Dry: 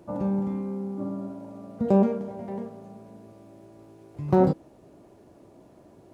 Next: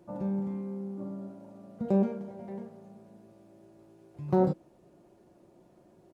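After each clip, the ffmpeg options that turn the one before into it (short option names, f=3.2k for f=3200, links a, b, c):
-af "aecho=1:1:5.6:0.41,volume=-7.5dB"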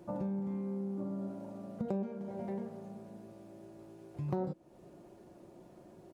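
-af "acompressor=threshold=-39dB:ratio=4,volume=4dB"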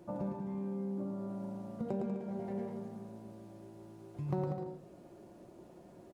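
-af "aecho=1:1:110|192.5|254.4|300.8|335.6:0.631|0.398|0.251|0.158|0.1,volume=-1.5dB"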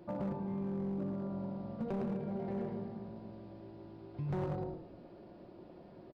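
-filter_complex "[0:a]asplit=5[a][b][c][d][e];[b]adelay=109,afreqshift=-45,volume=-11dB[f];[c]adelay=218,afreqshift=-90,volume=-19.9dB[g];[d]adelay=327,afreqshift=-135,volume=-28.7dB[h];[e]adelay=436,afreqshift=-180,volume=-37.6dB[i];[a][f][g][h][i]amix=inputs=5:normalize=0,aresample=11025,aresample=44100,asoftclip=type=hard:threshold=-33dB,volume=1dB"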